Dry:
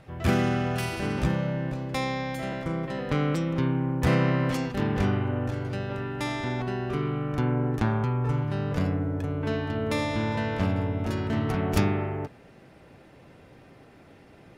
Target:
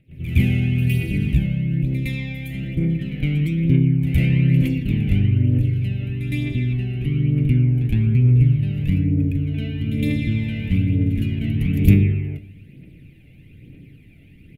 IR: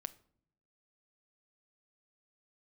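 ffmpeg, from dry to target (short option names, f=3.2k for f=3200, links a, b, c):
-filter_complex "[0:a]aphaser=in_gain=1:out_gain=1:delay=1.5:decay=0.51:speed=1.1:type=triangular,firequalizer=gain_entry='entry(270,0);entry(890,-30);entry(1300,-24);entry(2300,6);entry(5200,-16);entry(12000,4)':delay=0.05:min_phase=1,asplit=2[a][b];[1:a]atrim=start_sample=2205,lowshelf=f=230:g=7.5,adelay=112[c];[b][c]afir=irnorm=-1:irlink=0,volume=14.5dB[d];[a][d]amix=inputs=2:normalize=0,volume=-11dB"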